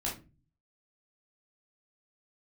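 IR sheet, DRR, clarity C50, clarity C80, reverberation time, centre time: -5.0 dB, 7.5 dB, 15.5 dB, 0.30 s, 27 ms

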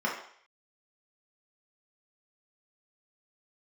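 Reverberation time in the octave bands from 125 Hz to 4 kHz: 0.35, 0.45, 0.55, 0.60, 0.60, 0.65 s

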